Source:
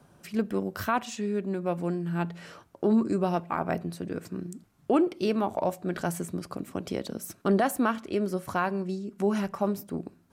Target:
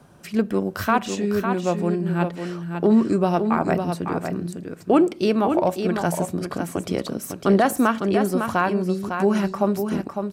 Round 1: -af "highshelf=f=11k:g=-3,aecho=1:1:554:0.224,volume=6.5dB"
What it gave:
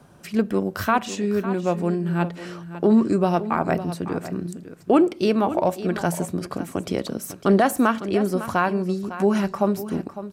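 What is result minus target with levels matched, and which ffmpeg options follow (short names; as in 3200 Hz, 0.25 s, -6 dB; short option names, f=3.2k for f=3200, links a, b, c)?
echo-to-direct -6.5 dB
-af "highshelf=f=11k:g=-3,aecho=1:1:554:0.473,volume=6.5dB"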